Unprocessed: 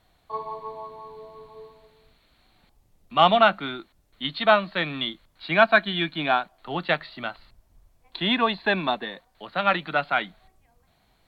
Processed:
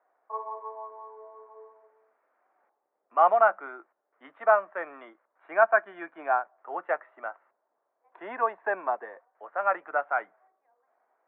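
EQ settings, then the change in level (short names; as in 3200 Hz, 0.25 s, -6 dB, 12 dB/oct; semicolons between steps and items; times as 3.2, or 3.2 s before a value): HPF 460 Hz 24 dB/oct; inverse Chebyshev low-pass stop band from 4100 Hz, stop band 50 dB; air absorption 270 m; -1.0 dB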